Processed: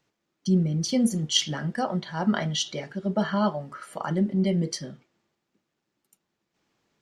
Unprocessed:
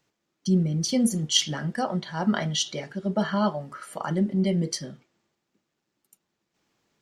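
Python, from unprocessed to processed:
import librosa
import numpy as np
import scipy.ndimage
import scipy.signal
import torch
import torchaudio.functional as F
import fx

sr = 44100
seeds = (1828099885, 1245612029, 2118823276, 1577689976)

y = fx.high_shelf(x, sr, hz=7500.0, db=-6.5)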